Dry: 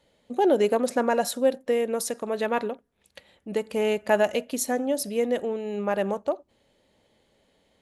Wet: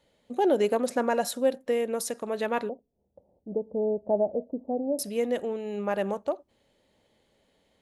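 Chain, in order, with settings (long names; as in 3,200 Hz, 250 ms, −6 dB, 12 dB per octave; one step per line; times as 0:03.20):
0:02.69–0:04.99: Butterworth low-pass 760 Hz 36 dB per octave
level −2.5 dB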